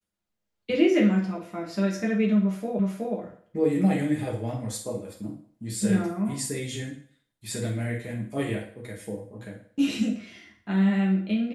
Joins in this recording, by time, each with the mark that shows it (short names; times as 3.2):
2.79 repeat of the last 0.37 s